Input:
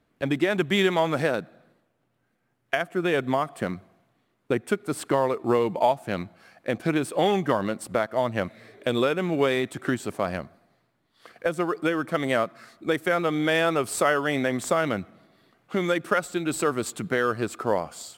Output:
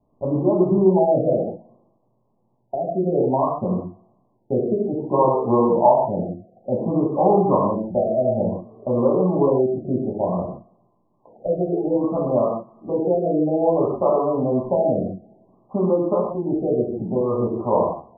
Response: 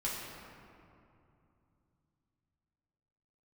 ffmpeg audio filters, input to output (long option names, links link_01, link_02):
-filter_complex "[0:a]asuperstop=centerf=2200:order=20:qfactor=0.69,bass=frequency=250:gain=-2,treble=frequency=4000:gain=-5[link_01];[1:a]atrim=start_sample=2205,afade=type=out:start_time=0.22:duration=0.01,atrim=end_sample=10143[link_02];[link_01][link_02]afir=irnorm=-1:irlink=0,afftfilt=real='re*lt(b*sr/1024,750*pow(1800/750,0.5+0.5*sin(2*PI*0.58*pts/sr)))':imag='im*lt(b*sr/1024,750*pow(1800/750,0.5+0.5*sin(2*PI*0.58*pts/sr)))':win_size=1024:overlap=0.75,volume=4dB"